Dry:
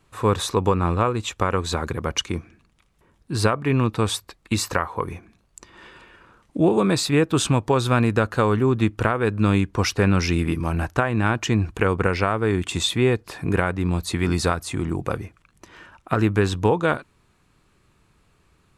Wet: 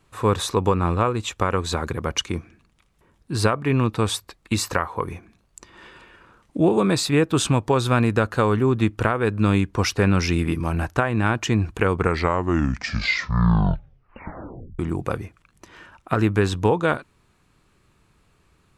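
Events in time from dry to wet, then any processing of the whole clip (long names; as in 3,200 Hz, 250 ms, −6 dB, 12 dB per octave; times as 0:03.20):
0:11.90: tape stop 2.89 s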